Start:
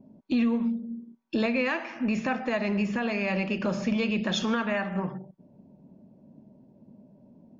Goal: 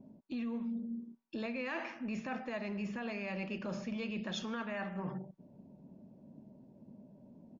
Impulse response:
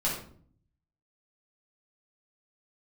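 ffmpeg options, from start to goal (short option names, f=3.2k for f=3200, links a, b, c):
-af "areverse,acompressor=threshold=-34dB:ratio=6,areverse,aresample=16000,aresample=44100,volume=-2.5dB"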